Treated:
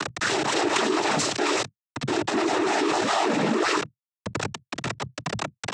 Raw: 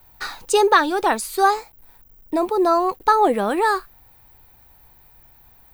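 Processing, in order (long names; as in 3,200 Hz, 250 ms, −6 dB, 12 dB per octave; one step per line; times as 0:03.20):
lower of the sound and its delayed copy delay 3.3 ms
low-pass that shuts in the quiet parts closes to 2,000 Hz, open at −15.5 dBFS
upward compression, threshold −32 dBFS
brickwall limiter −14 dBFS, peak gain reduction 8.5 dB
rotating-speaker cabinet horn 0.9 Hz, later 7.5 Hz, at 0:03.88
echo ahead of the sound 255 ms −16.5 dB
log-companded quantiser 2 bits
cochlear-implant simulation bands 12
envelope flattener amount 70%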